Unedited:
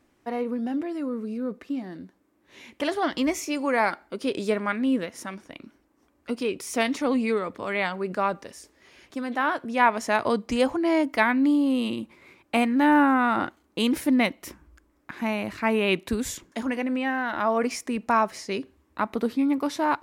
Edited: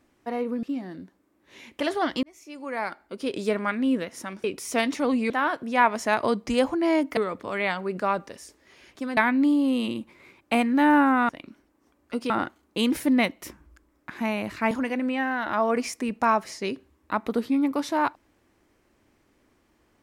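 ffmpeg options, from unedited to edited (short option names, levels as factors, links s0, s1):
-filter_complex "[0:a]asplit=10[s0][s1][s2][s3][s4][s5][s6][s7][s8][s9];[s0]atrim=end=0.632[s10];[s1]atrim=start=1.638:end=3.24,asetpts=PTS-STARTPTS,afade=t=out:st=1.598:d=0.004:c=hsin[s11];[s2]atrim=start=3.24:end=5.452,asetpts=PTS-STARTPTS,afade=t=in:d=1.31[s12];[s3]atrim=start=6.458:end=7.322[s13];[s4]atrim=start=9.318:end=11.192[s14];[s5]atrim=start=7.318:end=9.322[s15];[s6]atrim=start=11.188:end=13.312[s16];[s7]atrim=start=5.448:end=6.462[s17];[s8]atrim=start=13.308:end=15.722[s18];[s9]atrim=start=16.578[s19];[s11][s12]concat=n=2:v=0:a=1[s20];[s10][s20]acrossfade=d=0.004:c1=hsin:c2=hsin[s21];[s21][s13]acrossfade=d=0.004:c1=hsin:c2=hsin[s22];[s22][s14]acrossfade=d=0.004:c1=hsin:c2=hsin[s23];[s23][s15]acrossfade=d=0.004:c1=hsin:c2=hsin[s24];[s24][s16]acrossfade=d=0.004:c1=hsin:c2=hsin[s25];[s25][s17]acrossfade=d=0.004:c1=hsin:c2=hsin[s26];[s26][s18]acrossfade=d=0.004:c1=hsin:c2=hsin[s27];[s27][s19]acrossfade=d=0.004:c1=hsin:c2=hsin"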